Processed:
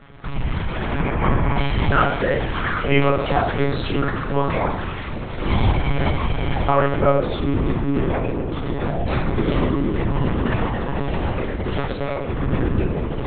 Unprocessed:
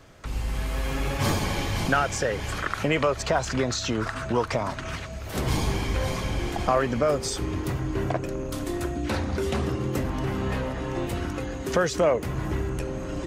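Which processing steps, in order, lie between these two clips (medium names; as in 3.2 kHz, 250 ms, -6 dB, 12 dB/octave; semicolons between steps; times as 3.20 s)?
0.97–1.57 s: low-pass 2.4 kHz 24 dB/octave; 4.89–5.39 s: compressor with a negative ratio -36 dBFS, ratio -1; 11.75–12.28 s: valve stage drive 28 dB, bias 0.7; simulated room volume 670 m³, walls furnished, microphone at 4.1 m; monotone LPC vocoder at 8 kHz 140 Hz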